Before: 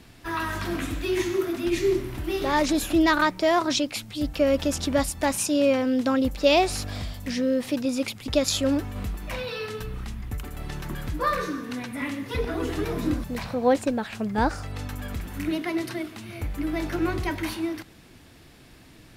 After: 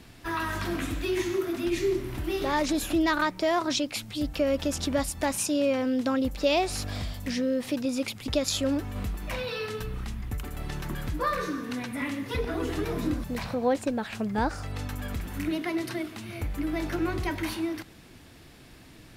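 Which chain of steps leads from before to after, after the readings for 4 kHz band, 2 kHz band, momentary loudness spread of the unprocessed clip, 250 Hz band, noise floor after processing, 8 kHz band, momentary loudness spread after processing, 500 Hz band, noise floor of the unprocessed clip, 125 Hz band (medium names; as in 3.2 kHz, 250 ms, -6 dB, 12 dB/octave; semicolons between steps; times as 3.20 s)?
-3.0 dB, -3.0 dB, 13 LU, -3.0 dB, -51 dBFS, -2.5 dB, 10 LU, -3.5 dB, -51 dBFS, -1.5 dB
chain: compression 1.5:1, threshold -29 dBFS, peak gain reduction 5.5 dB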